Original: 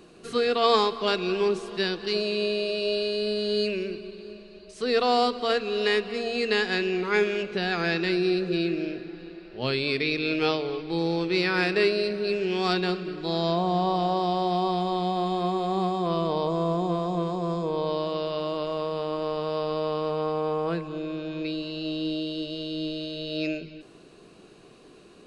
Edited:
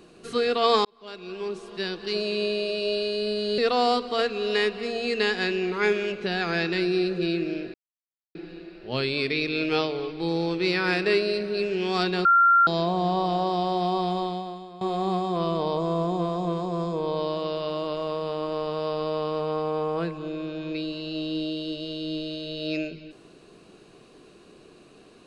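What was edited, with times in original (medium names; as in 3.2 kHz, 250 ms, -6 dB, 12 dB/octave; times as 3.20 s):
0.85–2.33 s: fade in
3.58–4.89 s: delete
9.05 s: insert silence 0.61 s
12.95–13.37 s: bleep 1.38 kHz -14 dBFS
14.89–15.51 s: fade out quadratic, to -17.5 dB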